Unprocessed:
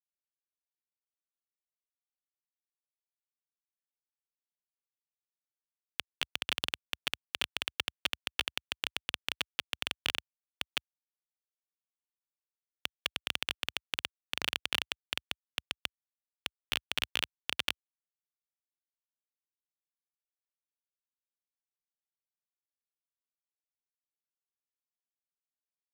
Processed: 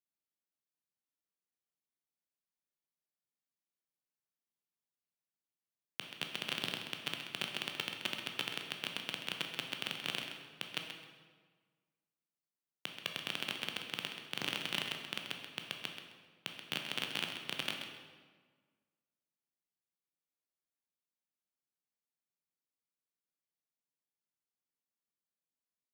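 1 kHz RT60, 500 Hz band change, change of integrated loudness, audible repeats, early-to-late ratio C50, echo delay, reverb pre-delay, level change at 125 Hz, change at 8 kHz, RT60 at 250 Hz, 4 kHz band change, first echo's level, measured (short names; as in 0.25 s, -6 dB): 1.5 s, 0.0 dB, -4.0 dB, 1, 3.5 dB, 0.131 s, 12 ms, +3.0 dB, -4.5 dB, 1.6 s, -4.0 dB, -9.0 dB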